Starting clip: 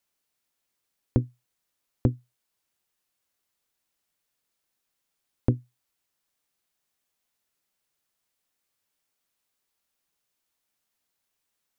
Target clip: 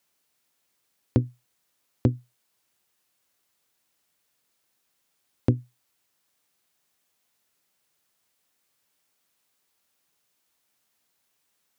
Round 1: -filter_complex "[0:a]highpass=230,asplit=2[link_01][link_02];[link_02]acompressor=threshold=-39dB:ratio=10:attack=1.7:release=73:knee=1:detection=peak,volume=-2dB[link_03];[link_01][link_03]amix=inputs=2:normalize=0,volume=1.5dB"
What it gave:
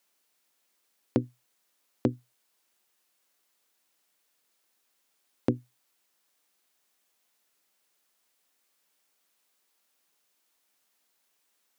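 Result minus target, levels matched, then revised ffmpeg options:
125 Hz band −6.0 dB
-filter_complex "[0:a]highpass=75,asplit=2[link_01][link_02];[link_02]acompressor=threshold=-39dB:ratio=10:attack=1.7:release=73:knee=1:detection=peak,volume=-2dB[link_03];[link_01][link_03]amix=inputs=2:normalize=0,volume=1.5dB"

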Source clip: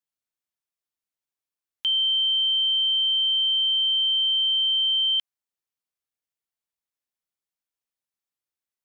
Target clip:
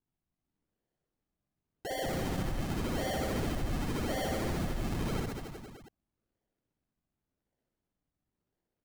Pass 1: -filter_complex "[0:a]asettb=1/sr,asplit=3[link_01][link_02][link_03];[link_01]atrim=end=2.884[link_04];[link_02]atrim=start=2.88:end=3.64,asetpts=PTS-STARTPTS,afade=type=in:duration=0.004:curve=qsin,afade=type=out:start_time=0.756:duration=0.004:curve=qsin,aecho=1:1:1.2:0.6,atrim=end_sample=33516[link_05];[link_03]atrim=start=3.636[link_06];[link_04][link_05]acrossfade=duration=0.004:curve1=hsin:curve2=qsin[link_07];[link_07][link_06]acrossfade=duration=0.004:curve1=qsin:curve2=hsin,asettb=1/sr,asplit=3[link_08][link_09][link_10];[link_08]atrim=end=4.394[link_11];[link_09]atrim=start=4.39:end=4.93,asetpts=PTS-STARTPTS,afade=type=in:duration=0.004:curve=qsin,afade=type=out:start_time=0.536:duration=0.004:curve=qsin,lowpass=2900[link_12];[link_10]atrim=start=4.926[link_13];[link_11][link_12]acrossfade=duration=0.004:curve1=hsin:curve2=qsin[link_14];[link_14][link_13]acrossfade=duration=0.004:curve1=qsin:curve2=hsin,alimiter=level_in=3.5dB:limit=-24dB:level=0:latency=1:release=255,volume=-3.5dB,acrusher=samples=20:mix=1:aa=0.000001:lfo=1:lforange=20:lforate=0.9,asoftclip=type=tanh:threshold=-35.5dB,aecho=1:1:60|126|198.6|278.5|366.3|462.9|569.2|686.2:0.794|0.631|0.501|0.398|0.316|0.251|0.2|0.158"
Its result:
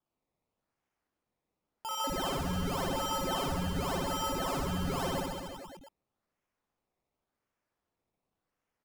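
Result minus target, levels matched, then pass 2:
sample-and-hold swept by an LFO: distortion −6 dB
-filter_complex "[0:a]asettb=1/sr,asplit=3[link_01][link_02][link_03];[link_01]atrim=end=2.884[link_04];[link_02]atrim=start=2.88:end=3.64,asetpts=PTS-STARTPTS,afade=type=in:duration=0.004:curve=qsin,afade=type=out:start_time=0.756:duration=0.004:curve=qsin,aecho=1:1:1.2:0.6,atrim=end_sample=33516[link_05];[link_03]atrim=start=3.636[link_06];[link_04][link_05]acrossfade=duration=0.004:curve1=hsin:curve2=qsin[link_07];[link_07][link_06]acrossfade=duration=0.004:curve1=qsin:curve2=hsin,asettb=1/sr,asplit=3[link_08][link_09][link_10];[link_08]atrim=end=4.394[link_11];[link_09]atrim=start=4.39:end=4.93,asetpts=PTS-STARTPTS,afade=type=in:duration=0.004:curve=qsin,afade=type=out:start_time=0.536:duration=0.004:curve=qsin,lowpass=2900[link_12];[link_10]atrim=start=4.926[link_13];[link_11][link_12]acrossfade=duration=0.004:curve1=hsin:curve2=qsin[link_14];[link_14][link_13]acrossfade=duration=0.004:curve1=qsin:curve2=hsin,alimiter=level_in=3.5dB:limit=-24dB:level=0:latency=1:release=255,volume=-3.5dB,acrusher=samples=67:mix=1:aa=0.000001:lfo=1:lforange=67:lforate=0.9,asoftclip=type=tanh:threshold=-35.5dB,aecho=1:1:60|126|198.6|278.5|366.3|462.9|569.2|686.2:0.794|0.631|0.501|0.398|0.316|0.251|0.2|0.158"

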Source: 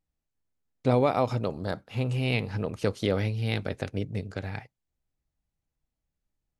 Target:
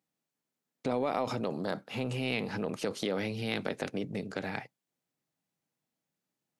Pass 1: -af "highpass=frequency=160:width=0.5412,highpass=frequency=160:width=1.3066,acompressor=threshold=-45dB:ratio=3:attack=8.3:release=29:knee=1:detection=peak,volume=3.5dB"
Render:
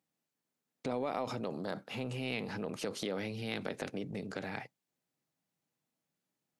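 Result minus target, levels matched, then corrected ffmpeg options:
downward compressor: peak gain reduction +4.5 dB
-af "highpass=frequency=160:width=0.5412,highpass=frequency=160:width=1.3066,acompressor=threshold=-38dB:ratio=3:attack=8.3:release=29:knee=1:detection=peak,volume=3.5dB"

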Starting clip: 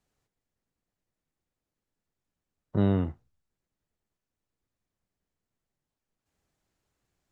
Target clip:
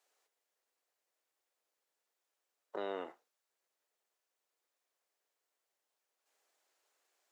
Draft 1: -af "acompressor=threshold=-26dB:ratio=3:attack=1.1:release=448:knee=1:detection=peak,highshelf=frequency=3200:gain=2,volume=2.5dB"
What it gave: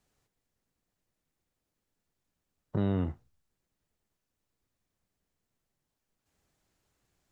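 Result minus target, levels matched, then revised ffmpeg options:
500 Hz band −7.5 dB
-af "acompressor=threshold=-26dB:ratio=3:attack=1.1:release=448:knee=1:detection=peak,highpass=frequency=450:width=0.5412,highpass=frequency=450:width=1.3066,highshelf=frequency=3200:gain=2,volume=2.5dB"

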